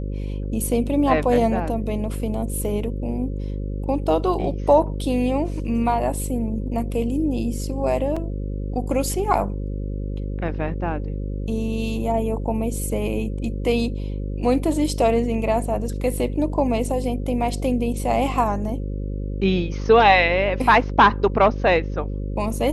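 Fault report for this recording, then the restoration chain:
buzz 50 Hz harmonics 11 -27 dBFS
8.16–8.17 gap 5.2 ms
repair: de-hum 50 Hz, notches 11; interpolate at 8.16, 5.2 ms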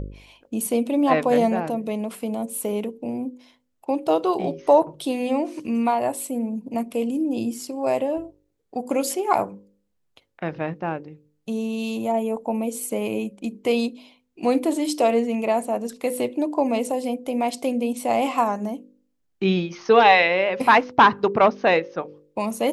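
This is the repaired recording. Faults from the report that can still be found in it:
none

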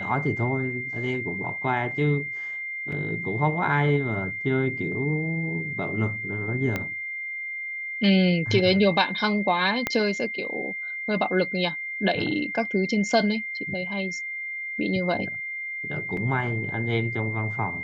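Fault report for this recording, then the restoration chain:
tone 2100 Hz -30 dBFS
2.92 gap 4.1 ms
6.76 pop -13 dBFS
9.87 pop -9 dBFS
16.17 gap 2.9 ms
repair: de-click; notch 2100 Hz, Q 30; interpolate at 2.92, 4.1 ms; interpolate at 16.17, 2.9 ms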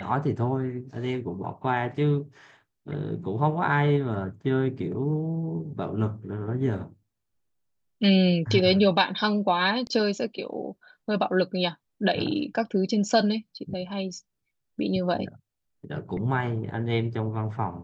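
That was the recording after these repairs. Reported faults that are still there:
6.76 pop
9.87 pop

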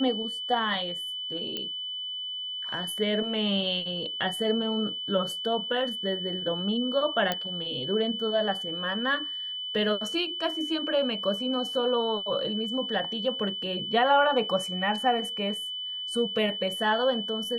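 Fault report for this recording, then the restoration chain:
tone 3000 Hz -32 dBFS
1.57 pop -18 dBFS
7.32 pop -12 dBFS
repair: de-click; notch 3000 Hz, Q 30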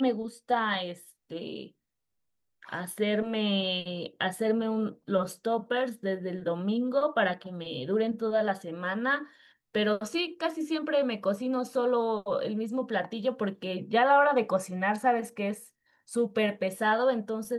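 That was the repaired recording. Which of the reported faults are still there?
1.57 pop

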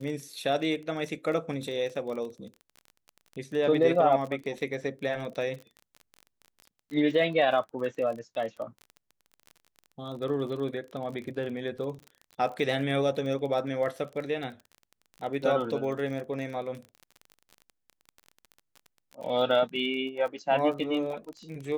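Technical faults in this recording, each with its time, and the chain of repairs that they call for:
crackle 30/s -36 dBFS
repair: de-click

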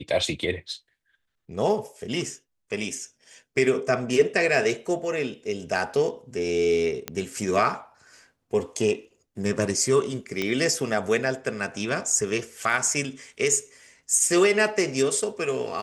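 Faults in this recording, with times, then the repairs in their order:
7.08 pop -12 dBFS
10.42 pop -12 dBFS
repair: de-click

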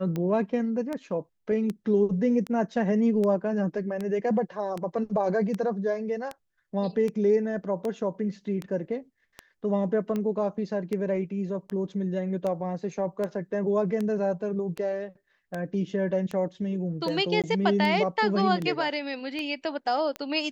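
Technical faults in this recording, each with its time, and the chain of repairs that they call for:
tick 78 rpm -19 dBFS
17.42–17.44 gap 17 ms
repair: de-click; interpolate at 17.42, 17 ms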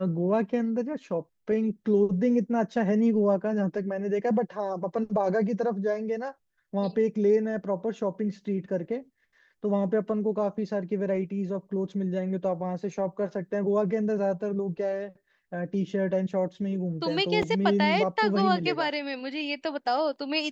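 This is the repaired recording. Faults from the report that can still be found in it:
none

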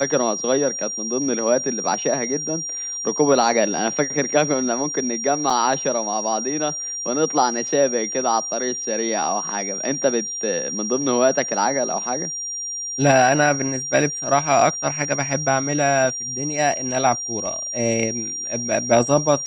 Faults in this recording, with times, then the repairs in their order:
tone 5700 Hz -26 dBFS
5.5 gap 4.2 ms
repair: notch 5700 Hz, Q 30; interpolate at 5.5, 4.2 ms

